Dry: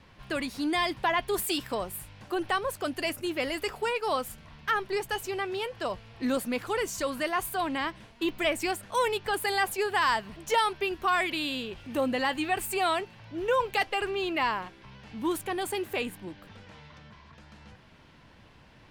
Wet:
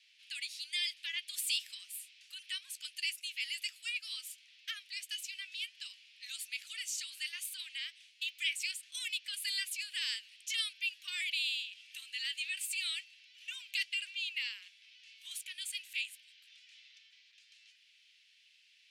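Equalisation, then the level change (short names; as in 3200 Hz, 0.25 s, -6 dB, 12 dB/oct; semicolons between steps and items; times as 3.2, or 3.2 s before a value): steep high-pass 2400 Hz 36 dB/oct; LPF 10000 Hz 12 dB/oct; 0.0 dB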